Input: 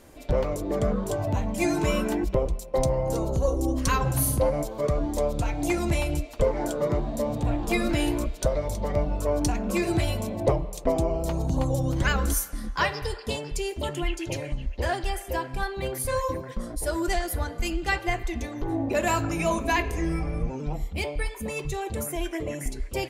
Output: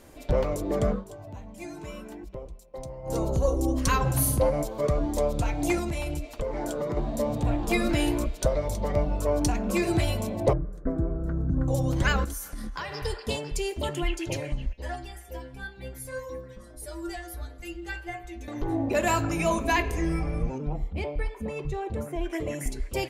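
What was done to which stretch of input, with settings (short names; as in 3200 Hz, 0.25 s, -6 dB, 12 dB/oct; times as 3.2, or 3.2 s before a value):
0.9–3.17 dip -15 dB, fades 0.14 s
5.79–6.97 compressor, threshold -26 dBFS
10.53–11.68 EQ curve 300 Hz 0 dB, 910 Hz -19 dB, 1500 Hz +4 dB, 2600 Hz -28 dB
12.24–13.05 compressor 12:1, threshold -30 dBFS
14.73–18.48 metallic resonator 62 Hz, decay 0.53 s, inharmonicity 0.008
20.58–22.3 LPF 1200 Hz 6 dB/oct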